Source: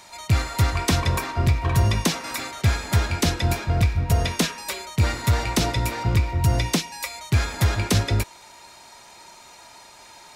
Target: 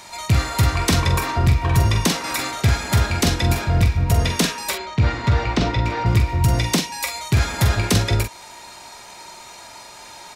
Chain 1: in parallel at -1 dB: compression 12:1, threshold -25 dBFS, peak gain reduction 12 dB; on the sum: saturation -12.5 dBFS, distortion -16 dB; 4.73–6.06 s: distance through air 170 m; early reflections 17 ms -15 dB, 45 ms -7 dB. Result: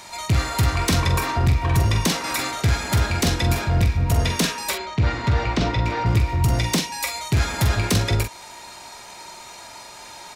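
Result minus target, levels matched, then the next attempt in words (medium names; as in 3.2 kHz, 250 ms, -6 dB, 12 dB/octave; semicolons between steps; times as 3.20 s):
saturation: distortion +19 dB
in parallel at -1 dB: compression 12:1, threshold -25 dBFS, peak gain reduction 12 dB; on the sum: saturation -1 dBFS, distortion -35 dB; 4.73–6.06 s: distance through air 170 m; early reflections 17 ms -15 dB, 45 ms -7 dB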